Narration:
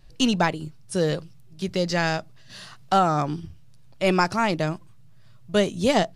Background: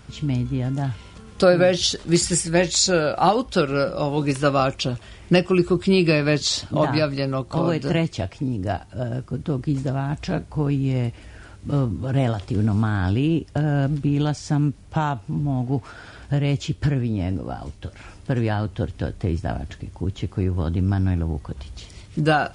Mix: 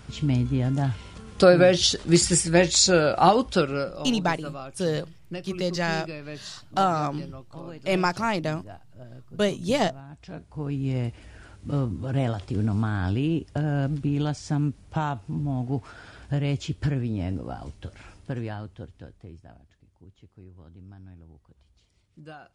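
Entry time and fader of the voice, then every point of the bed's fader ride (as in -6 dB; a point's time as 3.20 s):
3.85 s, -3.0 dB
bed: 3.48 s 0 dB
4.38 s -18.5 dB
10.13 s -18.5 dB
10.89 s -4.5 dB
17.99 s -4.5 dB
19.67 s -25.5 dB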